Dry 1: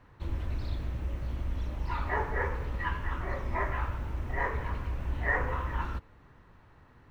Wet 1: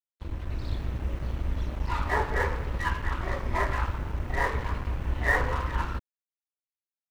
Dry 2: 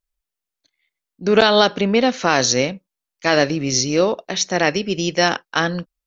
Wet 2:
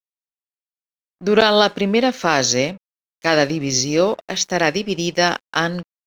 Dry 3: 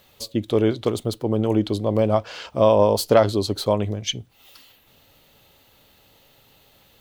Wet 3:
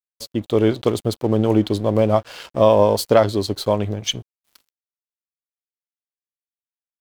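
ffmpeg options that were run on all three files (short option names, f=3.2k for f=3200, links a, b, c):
-af "aeval=exprs='sgn(val(0))*max(abs(val(0))-0.00708,0)':c=same,dynaudnorm=f=380:g=3:m=5.5dB"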